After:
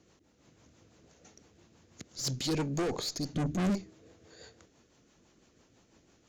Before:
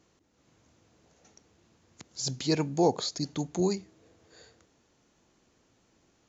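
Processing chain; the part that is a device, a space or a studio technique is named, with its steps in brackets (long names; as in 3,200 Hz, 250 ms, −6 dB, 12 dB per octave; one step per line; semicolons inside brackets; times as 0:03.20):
0:03.34–0:03.75: low shelf with overshoot 370 Hz +13 dB, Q 1.5
overdriven rotary cabinet (tube saturation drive 31 dB, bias 0.3; rotating-speaker cabinet horn 6 Hz)
level +5.5 dB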